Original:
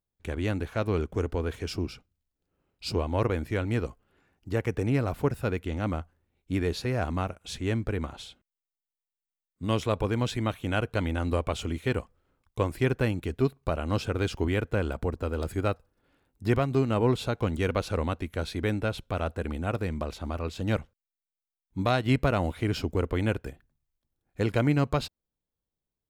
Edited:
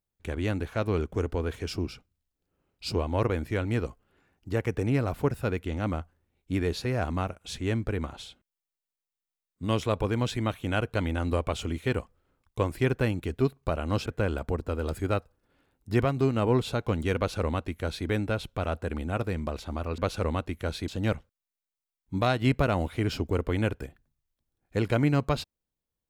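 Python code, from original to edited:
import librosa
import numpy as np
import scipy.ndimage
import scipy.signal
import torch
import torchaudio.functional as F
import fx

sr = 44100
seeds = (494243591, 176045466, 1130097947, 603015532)

y = fx.edit(x, sr, fx.cut(start_s=14.06, length_s=0.54),
    fx.duplicate(start_s=17.71, length_s=0.9, to_s=20.52), tone=tone)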